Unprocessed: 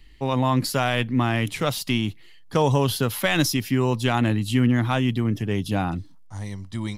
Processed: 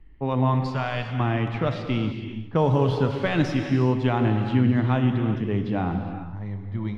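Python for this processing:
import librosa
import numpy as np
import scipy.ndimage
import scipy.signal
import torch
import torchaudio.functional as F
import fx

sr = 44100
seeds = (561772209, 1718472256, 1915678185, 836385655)

y = fx.env_lowpass(x, sr, base_hz=1700.0, full_db=-16.0)
y = fx.peak_eq(y, sr, hz=320.0, db=-13.5, octaves=1.5, at=(0.54, 1.2))
y = fx.dmg_noise_colour(y, sr, seeds[0], colour='white', level_db=-42.0, at=(2.57, 3.82), fade=0.02)
y = fx.spacing_loss(y, sr, db_at_10k=30)
y = fx.echo_feedback(y, sr, ms=215, feedback_pct=34, wet_db=-19.5)
y = fx.rev_gated(y, sr, seeds[1], gate_ms=440, shape='flat', drr_db=5.0)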